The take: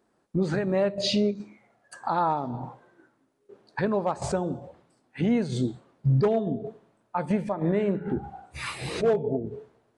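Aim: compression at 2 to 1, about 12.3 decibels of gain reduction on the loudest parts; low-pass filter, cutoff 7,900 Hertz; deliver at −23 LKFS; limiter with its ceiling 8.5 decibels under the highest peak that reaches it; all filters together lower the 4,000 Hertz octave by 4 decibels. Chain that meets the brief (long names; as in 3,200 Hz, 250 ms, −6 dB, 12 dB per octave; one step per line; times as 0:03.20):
low-pass filter 7,900 Hz
parametric band 4,000 Hz −4.5 dB
downward compressor 2 to 1, threshold −42 dBFS
level +19 dB
brickwall limiter −13 dBFS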